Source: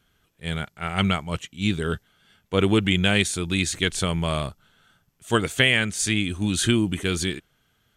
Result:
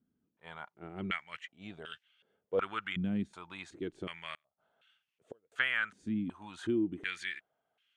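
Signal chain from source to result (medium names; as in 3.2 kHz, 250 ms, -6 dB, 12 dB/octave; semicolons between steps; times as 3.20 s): dynamic bell 390 Hz, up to -6 dB, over -35 dBFS, Q 0.93; 4.34–5.52 s: inverted gate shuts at -19 dBFS, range -37 dB; step-sequenced band-pass 2.7 Hz 240–2700 Hz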